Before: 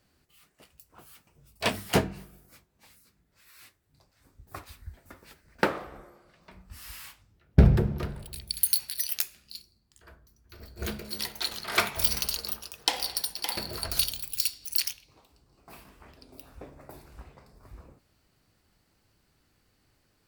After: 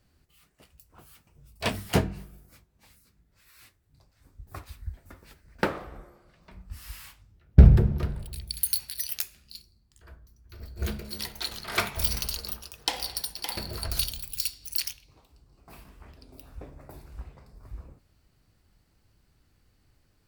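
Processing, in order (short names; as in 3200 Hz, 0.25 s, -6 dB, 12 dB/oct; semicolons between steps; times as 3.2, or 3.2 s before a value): in parallel at -9 dB: soft clip -12.5 dBFS, distortion -13 dB; on the sum: low shelf 120 Hz +11.5 dB; gain -4.5 dB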